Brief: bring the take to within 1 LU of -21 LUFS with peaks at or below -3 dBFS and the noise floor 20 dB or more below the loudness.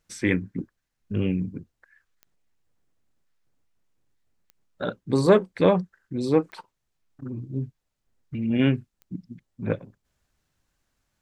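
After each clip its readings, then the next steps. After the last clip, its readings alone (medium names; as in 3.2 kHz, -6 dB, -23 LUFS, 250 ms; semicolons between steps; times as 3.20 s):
clicks found 4; loudness -25.5 LUFS; peak level -4.5 dBFS; loudness target -21.0 LUFS
-> de-click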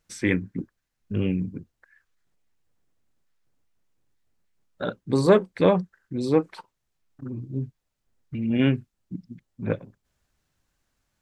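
clicks found 0; loudness -25.5 LUFS; peak level -4.5 dBFS; loudness target -21.0 LUFS
-> trim +4.5 dB; peak limiter -3 dBFS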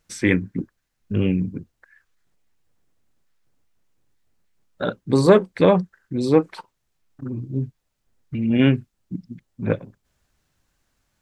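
loudness -21.5 LUFS; peak level -3.0 dBFS; noise floor -74 dBFS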